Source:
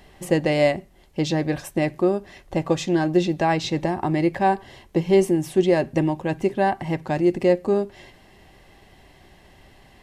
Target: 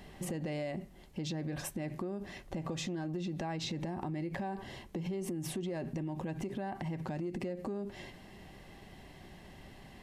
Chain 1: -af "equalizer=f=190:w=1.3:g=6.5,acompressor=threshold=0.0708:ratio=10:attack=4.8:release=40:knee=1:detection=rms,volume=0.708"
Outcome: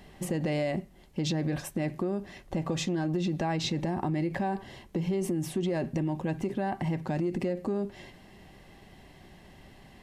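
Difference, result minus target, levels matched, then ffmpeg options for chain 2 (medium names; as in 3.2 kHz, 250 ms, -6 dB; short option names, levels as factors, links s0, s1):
compression: peak gain reduction -8 dB
-af "equalizer=f=190:w=1.3:g=6.5,acompressor=threshold=0.0251:ratio=10:attack=4.8:release=40:knee=1:detection=rms,volume=0.708"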